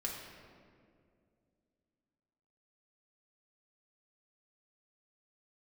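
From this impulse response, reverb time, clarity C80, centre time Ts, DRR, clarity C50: 2.3 s, 4.0 dB, 77 ms, −2.5 dB, 2.0 dB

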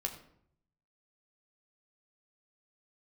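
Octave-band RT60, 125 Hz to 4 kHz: 1.1, 0.80, 0.70, 0.65, 0.55, 0.45 seconds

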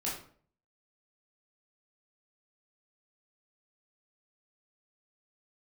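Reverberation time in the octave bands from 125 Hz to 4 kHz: 0.65, 0.55, 0.55, 0.45, 0.40, 0.35 seconds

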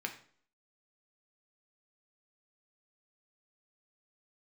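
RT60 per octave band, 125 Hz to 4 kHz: 0.50, 0.55, 0.55, 0.50, 0.45, 0.45 seconds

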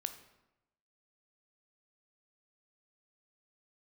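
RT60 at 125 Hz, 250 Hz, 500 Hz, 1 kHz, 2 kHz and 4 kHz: 1.0, 0.95, 0.95, 0.90, 0.80, 0.65 seconds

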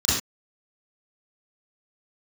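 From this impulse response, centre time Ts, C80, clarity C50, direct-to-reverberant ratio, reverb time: 63 ms, 4.5 dB, −0.5 dB, −12.5 dB, non-exponential decay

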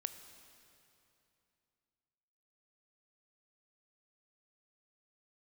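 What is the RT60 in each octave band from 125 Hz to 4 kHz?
3.2, 3.2, 2.8, 2.8, 2.6, 2.5 seconds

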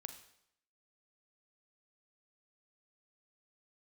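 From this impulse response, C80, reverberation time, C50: 12.5 dB, 0.75 s, 10.0 dB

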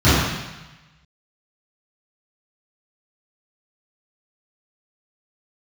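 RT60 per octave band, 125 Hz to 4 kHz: 1.3, 1.1, 0.95, 1.2, 1.2, 1.2 seconds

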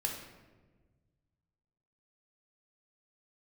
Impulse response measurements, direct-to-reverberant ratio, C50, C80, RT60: 0.5 dB, 5.0 dB, 7.0 dB, 1.3 s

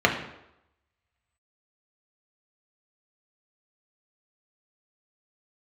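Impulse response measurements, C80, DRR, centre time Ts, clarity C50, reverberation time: 10.5 dB, 0.0 dB, 22 ms, 7.5 dB, 0.85 s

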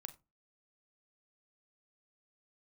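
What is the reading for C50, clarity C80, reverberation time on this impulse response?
16.5 dB, 23.0 dB, 0.25 s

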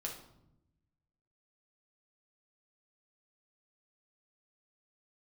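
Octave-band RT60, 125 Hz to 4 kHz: 1.5, 1.3, 0.90, 0.75, 0.55, 0.55 seconds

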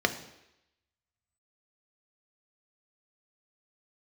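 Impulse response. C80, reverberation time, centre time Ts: 15.0 dB, 0.85 s, 9 ms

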